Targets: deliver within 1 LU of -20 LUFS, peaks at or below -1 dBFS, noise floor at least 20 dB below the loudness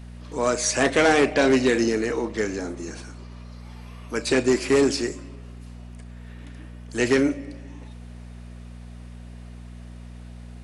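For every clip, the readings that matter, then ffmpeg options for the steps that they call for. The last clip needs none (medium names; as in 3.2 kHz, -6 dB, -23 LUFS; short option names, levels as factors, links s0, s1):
hum 60 Hz; highest harmonic 240 Hz; hum level -37 dBFS; loudness -22.5 LUFS; peak level -10.0 dBFS; loudness target -20.0 LUFS
-> -af "bandreject=f=60:t=h:w=4,bandreject=f=120:t=h:w=4,bandreject=f=180:t=h:w=4,bandreject=f=240:t=h:w=4"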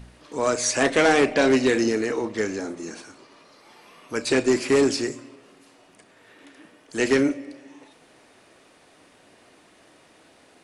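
hum not found; loudness -22.0 LUFS; peak level -9.5 dBFS; loudness target -20.0 LUFS
-> -af "volume=1.26"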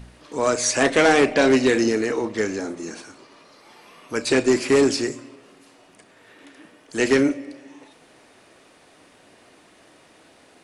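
loudness -20.0 LUFS; peak level -7.5 dBFS; noise floor -54 dBFS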